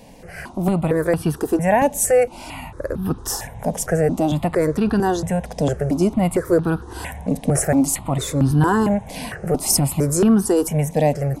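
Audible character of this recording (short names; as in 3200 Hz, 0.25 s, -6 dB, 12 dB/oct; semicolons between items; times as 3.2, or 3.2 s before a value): notches that jump at a steady rate 4.4 Hz 360–2100 Hz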